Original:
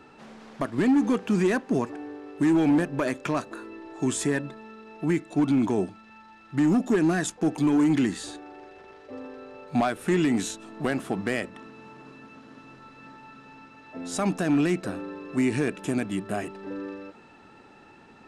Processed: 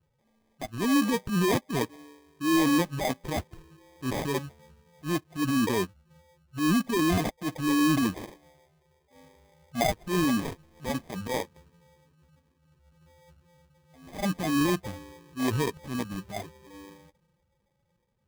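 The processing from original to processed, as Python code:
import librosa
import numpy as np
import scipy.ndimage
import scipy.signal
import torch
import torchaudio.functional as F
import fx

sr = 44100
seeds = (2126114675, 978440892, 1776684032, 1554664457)

p1 = fx.bin_expand(x, sr, power=2.0)
p2 = fx.high_shelf(p1, sr, hz=7000.0, db=-11.5)
p3 = fx.over_compress(p2, sr, threshold_db=-31.0, ratio=-1.0)
p4 = p2 + (p3 * librosa.db_to_amplitude(-1.5))
p5 = fx.transient(p4, sr, attack_db=-11, sustain_db=3)
y = fx.sample_hold(p5, sr, seeds[0], rate_hz=1400.0, jitter_pct=0)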